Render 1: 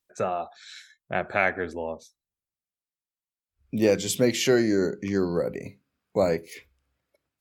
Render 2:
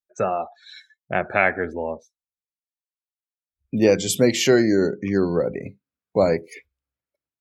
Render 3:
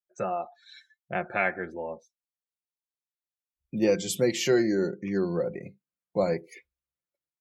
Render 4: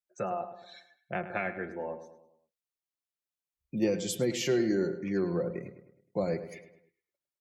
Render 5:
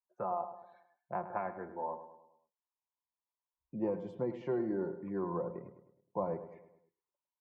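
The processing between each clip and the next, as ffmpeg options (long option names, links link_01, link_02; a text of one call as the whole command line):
ffmpeg -i in.wav -af "afftdn=noise_reduction=19:noise_floor=-43,volume=4.5dB" out.wav
ffmpeg -i in.wav -af "aecho=1:1:5.7:0.52,volume=-8.5dB" out.wav
ffmpeg -i in.wav -filter_complex "[0:a]acrossover=split=350[link_01][link_02];[link_02]acompressor=threshold=-28dB:ratio=6[link_03];[link_01][link_03]amix=inputs=2:normalize=0,asplit=2[link_04][link_05];[link_05]adelay=104,lowpass=frequency=3000:poles=1,volume=-11.5dB,asplit=2[link_06][link_07];[link_07]adelay=104,lowpass=frequency=3000:poles=1,volume=0.48,asplit=2[link_08][link_09];[link_09]adelay=104,lowpass=frequency=3000:poles=1,volume=0.48,asplit=2[link_10][link_11];[link_11]adelay=104,lowpass=frequency=3000:poles=1,volume=0.48,asplit=2[link_12][link_13];[link_13]adelay=104,lowpass=frequency=3000:poles=1,volume=0.48[link_14];[link_06][link_08][link_10][link_12][link_14]amix=inputs=5:normalize=0[link_15];[link_04][link_15]amix=inputs=2:normalize=0,volume=-2dB" out.wav
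ffmpeg -i in.wav -af "lowpass=frequency=980:width_type=q:width=8.8,volume=-8dB" out.wav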